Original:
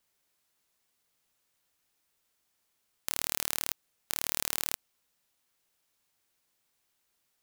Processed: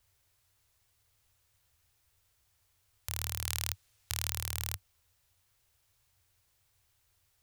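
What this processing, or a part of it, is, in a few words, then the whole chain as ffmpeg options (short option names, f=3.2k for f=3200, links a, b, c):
car stereo with a boomy subwoofer: -filter_complex "[0:a]lowshelf=f=140:t=q:w=3:g=13.5,alimiter=limit=-11dB:level=0:latency=1:release=21,asettb=1/sr,asplit=3[a][b][c];[a]atrim=end=3.474[d];[b]atrim=start=3.47:end=4.3,asetpts=PTS-STARTPTS,afade=t=in:d=0.004:c=qsin,afade=t=out:st=0.826:d=0.004:c=qsin,equalizer=f=4.3k:w=0.4:g=5[e];[c]atrim=start=4.296[f];[d][e]acrossfade=d=0.004:c1=hsin:c2=qsin[g];[g][f]acrossfade=d=0.004:c1=qsin:c2=hsin,volume=3dB"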